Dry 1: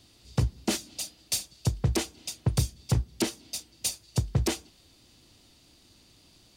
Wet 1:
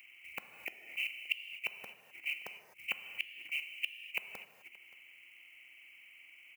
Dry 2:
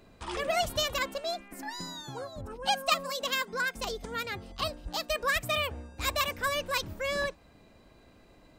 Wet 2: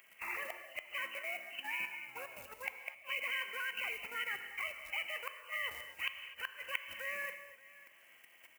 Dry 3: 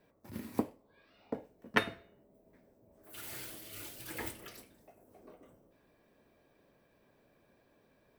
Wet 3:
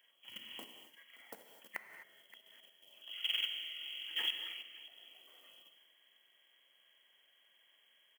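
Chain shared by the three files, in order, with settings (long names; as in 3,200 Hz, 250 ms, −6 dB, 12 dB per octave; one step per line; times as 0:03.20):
hearing-aid frequency compression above 1,800 Hz 4 to 1
low-shelf EQ 63 Hz +8.5 dB
mains-hum notches 60/120/180/240/300/360/420 Hz
output level in coarse steps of 13 dB
floating-point word with a short mantissa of 4 bits
gate with flip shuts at −24 dBFS, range −39 dB
first difference
single-tap delay 575 ms −23 dB
reverb whose tail is shaped and stops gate 280 ms flat, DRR 7.5 dB
one half of a high-frequency compander encoder only
level +13 dB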